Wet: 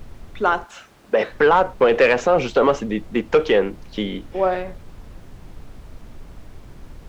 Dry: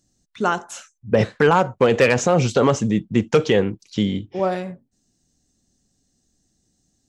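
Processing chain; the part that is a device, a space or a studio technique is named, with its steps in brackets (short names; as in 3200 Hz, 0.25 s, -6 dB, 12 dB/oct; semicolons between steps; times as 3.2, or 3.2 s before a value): aircraft cabin announcement (BPF 350–3000 Hz; soft clip -8 dBFS, distortion -20 dB; brown noise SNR 16 dB); 0.63–1.3 HPF 1000 Hz -> 270 Hz 6 dB/oct; gain +3.5 dB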